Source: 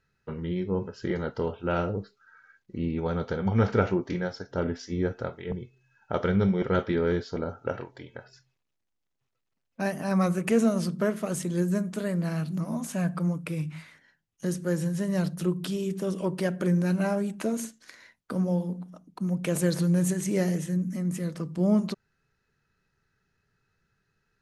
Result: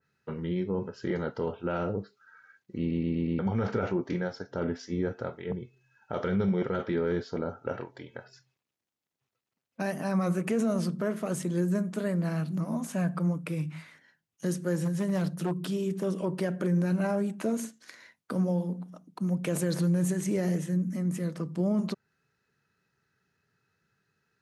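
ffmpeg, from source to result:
ffmpeg -i in.wav -filter_complex "[0:a]asettb=1/sr,asplit=3[link_01][link_02][link_03];[link_01]atrim=end=14.754[link_04];[link_02]atrim=start=14.75:end=16.07,asetpts=PTS-STARTPTS,afade=type=in:duration=0.004:curve=qsin,afade=type=out:start_time=1.316:duration=0.004:curve=qsin,aeval=exprs='0.0841*(abs(mod(val(0)/0.0841+3,4)-2)-1)':channel_layout=same[link_05];[link_03]atrim=start=16.066[link_06];[link_04][link_05]acrossfade=duration=0.004:curve1=hsin:curve2=qsin[link_07];[link_07][link_06]acrossfade=duration=0.004:curve1=qsin:curve2=hsin,asplit=6[link_08][link_09][link_10][link_11][link_12][link_13];[link_08]atrim=end=2.912[link_14];[link_09]atrim=start=2.788:end=2.912[link_15];[link_10]atrim=start=2.788:end=2.912[link_16];[link_11]atrim=start=2.788:end=2.912[link_17];[link_12]atrim=start=2.788:end=2.912[link_18];[link_13]atrim=start=3.388[link_19];[link_14][link_15]acrossfade=duration=0.004:curve1=hsin:curve2=hsin[link_20];[link_20][link_16]acrossfade=duration=0.004:curve1=hsin:curve2=hsin[link_21];[link_21][link_17]acrossfade=duration=0.004:curve1=hsin:curve2=hsin[link_22];[link_22][link_18]acrossfade=duration=0.004:curve1=hsin:curve2=hsin[link_23];[link_23][link_19]acrossfade=duration=0.004:curve1=hsin:curve2=hsin,highpass=110,alimiter=limit=-19.5dB:level=0:latency=1:release=15,adynamicequalizer=threshold=0.00316:dfrequency=2200:dqfactor=0.7:tfrequency=2200:tqfactor=0.7:attack=5:release=100:ratio=0.375:range=2:mode=cutabove:tftype=highshelf" out.wav

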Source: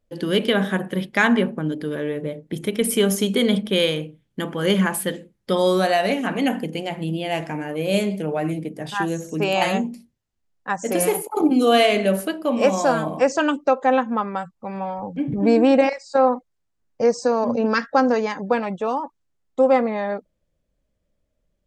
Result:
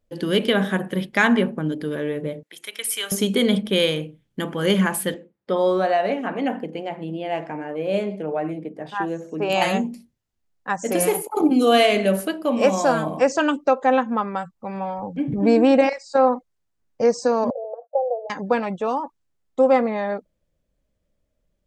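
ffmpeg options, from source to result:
ffmpeg -i in.wav -filter_complex "[0:a]asettb=1/sr,asplit=3[link_01][link_02][link_03];[link_01]atrim=end=2.434[link_04];[link_02]atrim=start=2.43:end=3.12,asetpts=PTS-STARTPTS,afade=type=in:duration=0.004:curve=qsin,afade=type=out:start_time=0.686:duration=0.004:curve=qsin,highpass=1300[link_05];[link_03]atrim=start=3.116[link_06];[link_04][link_05]acrossfade=duration=0.004:curve1=hsin:curve2=qsin[link_07];[link_07][link_06]acrossfade=duration=0.004:curve1=qsin:curve2=hsin,asettb=1/sr,asplit=3[link_08][link_09][link_10];[link_08]atrim=end=5.144[link_11];[link_09]atrim=start=5.14:end=9.5,asetpts=PTS-STARTPTS,afade=type=in:duration=0.004:curve=qsin,afade=type=out:start_time=4.356:duration=0.004:curve=qsin,bandpass=frequency=660:width_type=q:width=0.55[link_12];[link_10]atrim=start=9.496[link_13];[link_11][link_12]acrossfade=duration=0.004:curve1=hsin:curve2=qsin[link_14];[link_14][link_13]acrossfade=duration=0.004:curve1=qsin:curve2=hsin,asettb=1/sr,asplit=3[link_15][link_16][link_17];[link_15]atrim=end=17.504[link_18];[link_16]atrim=start=17.5:end=18.3,asetpts=PTS-STARTPTS,afade=type=in:duration=0.004:curve=qsin,afade=type=out:start_time=0.796:duration=0.004:curve=qsin,asuperpass=centerf=610:order=8:qfactor=2.2[link_19];[link_17]atrim=start=18.296[link_20];[link_18][link_19]acrossfade=duration=0.004:curve1=hsin:curve2=qsin[link_21];[link_21][link_20]acrossfade=duration=0.004:curve1=qsin:curve2=hsin" out.wav

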